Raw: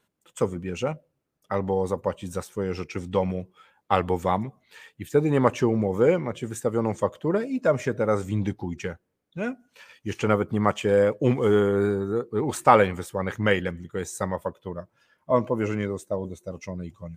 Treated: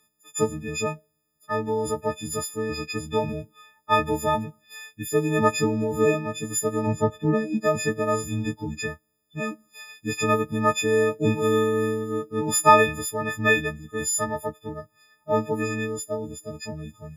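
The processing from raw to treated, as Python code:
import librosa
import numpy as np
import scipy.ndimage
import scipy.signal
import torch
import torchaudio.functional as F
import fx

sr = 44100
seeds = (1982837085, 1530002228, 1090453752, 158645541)

y = fx.freq_snap(x, sr, grid_st=6)
y = fx.peak_eq(y, sr, hz=750.0, db=-8.5, octaves=0.28)
y = fx.hpss(y, sr, part='harmonic', gain_db=-5)
y = fx.bass_treble(y, sr, bass_db=9, treble_db=-9, at=(6.86, 7.6), fade=0.02)
y = y * 10.0 ** (3.0 / 20.0)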